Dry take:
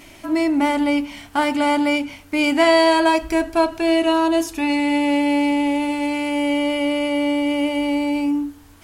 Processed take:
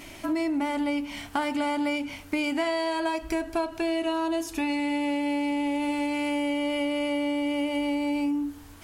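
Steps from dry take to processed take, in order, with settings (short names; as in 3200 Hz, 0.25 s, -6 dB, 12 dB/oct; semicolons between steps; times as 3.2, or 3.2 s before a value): compressor 6:1, threshold -25 dBFS, peak gain reduction 14 dB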